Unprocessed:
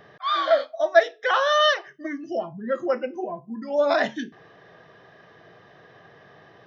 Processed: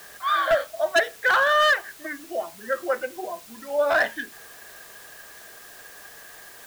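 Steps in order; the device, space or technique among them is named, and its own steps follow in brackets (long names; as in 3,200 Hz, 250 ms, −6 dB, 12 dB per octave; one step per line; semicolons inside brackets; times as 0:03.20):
drive-through speaker (band-pass filter 460–3,500 Hz; parametric band 1,600 Hz +9.5 dB 0.32 octaves; hard clipping −14 dBFS, distortion −10 dB; white noise bed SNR 21 dB)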